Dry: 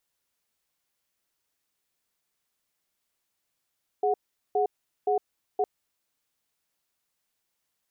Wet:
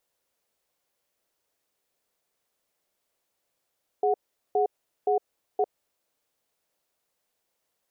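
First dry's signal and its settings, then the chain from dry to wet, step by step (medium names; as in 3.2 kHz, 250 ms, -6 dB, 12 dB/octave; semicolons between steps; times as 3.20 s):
cadence 416 Hz, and 735 Hz, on 0.11 s, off 0.41 s, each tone -24 dBFS 1.61 s
peaking EQ 540 Hz +9.5 dB 1.3 oct; peak limiter -17 dBFS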